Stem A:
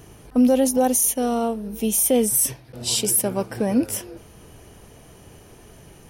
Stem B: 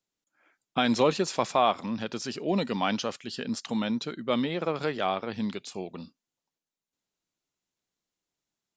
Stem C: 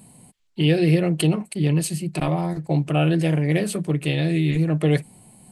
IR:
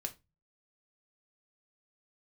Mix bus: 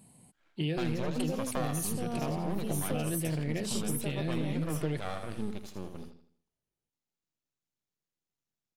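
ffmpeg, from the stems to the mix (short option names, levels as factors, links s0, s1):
-filter_complex "[0:a]adelay=800,volume=0.211[s0];[1:a]equalizer=f=130:w=0.75:g=9,aeval=exprs='max(val(0),0)':c=same,volume=0.562,asplit=3[s1][s2][s3];[s2]volume=0.376[s4];[2:a]volume=0.335[s5];[s3]apad=whole_len=304200[s6];[s0][s6]sidechaingate=range=0.0224:threshold=0.00447:ratio=16:detection=peak[s7];[s4]aecho=0:1:81|162|243|324|405:1|0.38|0.144|0.0549|0.0209[s8];[s7][s1][s5][s8]amix=inputs=4:normalize=0,acompressor=threshold=0.0398:ratio=5"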